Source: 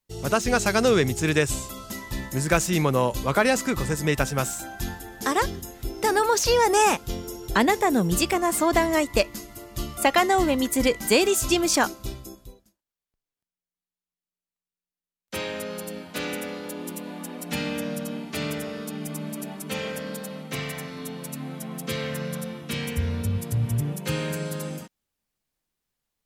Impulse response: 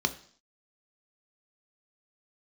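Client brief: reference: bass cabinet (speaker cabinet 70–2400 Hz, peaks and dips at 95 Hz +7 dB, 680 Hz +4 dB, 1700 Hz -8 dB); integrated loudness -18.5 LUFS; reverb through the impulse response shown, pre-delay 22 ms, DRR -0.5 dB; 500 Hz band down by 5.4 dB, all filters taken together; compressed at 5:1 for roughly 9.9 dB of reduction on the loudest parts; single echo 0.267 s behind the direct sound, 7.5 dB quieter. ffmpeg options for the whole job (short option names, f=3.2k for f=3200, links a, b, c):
-filter_complex "[0:a]equalizer=f=500:t=o:g=-8.5,acompressor=threshold=-29dB:ratio=5,aecho=1:1:267:0.422,asplit=2[a][b];[1:a]atrim=start_sample=2205,adelay=22[c];[b][c]afir=irnorm=-1:irlink=0,volume=-8dB[d];[a][d]amix=inputs=2:normalize=0,highpass=f=70:w=0.5412,highpass=f=70:w=1.3066,equalizer=f=95:t=q:w=4:g=7,equalizer=f=680:t=q:w=4:g=4,equalizer=f=1.7k:t=q:w=4:g=-8,lowpass=f=2.4k:w=0.5412,lowpass=f=2.4k:w=1.3066,volume=12dB"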